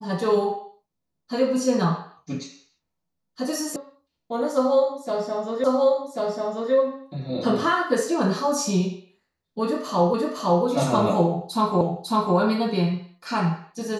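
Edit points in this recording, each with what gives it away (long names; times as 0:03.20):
0:03.76: cut off before it has died away
0:05.64: the same again, the last 1.09 s
0:10.14: the same again, the last 0.51 s
0:11.81: the same again, the last 0.55 s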